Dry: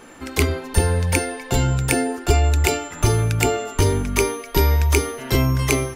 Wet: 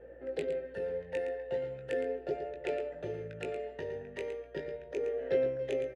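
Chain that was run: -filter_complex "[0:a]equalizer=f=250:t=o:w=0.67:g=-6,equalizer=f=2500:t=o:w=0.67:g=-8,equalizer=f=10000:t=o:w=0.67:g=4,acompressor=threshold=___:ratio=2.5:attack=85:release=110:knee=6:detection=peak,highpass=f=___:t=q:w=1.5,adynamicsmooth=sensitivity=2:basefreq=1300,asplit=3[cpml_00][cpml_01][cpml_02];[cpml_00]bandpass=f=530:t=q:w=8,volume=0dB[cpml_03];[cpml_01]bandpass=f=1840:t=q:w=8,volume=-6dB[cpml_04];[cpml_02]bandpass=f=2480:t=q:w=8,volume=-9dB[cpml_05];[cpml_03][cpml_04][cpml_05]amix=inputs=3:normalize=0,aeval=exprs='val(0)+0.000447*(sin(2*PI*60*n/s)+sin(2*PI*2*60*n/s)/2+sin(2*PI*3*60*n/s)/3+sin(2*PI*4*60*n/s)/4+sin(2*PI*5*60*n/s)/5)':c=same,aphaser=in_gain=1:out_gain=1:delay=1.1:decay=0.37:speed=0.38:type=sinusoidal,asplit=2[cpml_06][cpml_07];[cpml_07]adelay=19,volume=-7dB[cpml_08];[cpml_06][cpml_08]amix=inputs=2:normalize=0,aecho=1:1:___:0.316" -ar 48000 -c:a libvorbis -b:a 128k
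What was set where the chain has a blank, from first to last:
-25dB, 150, 114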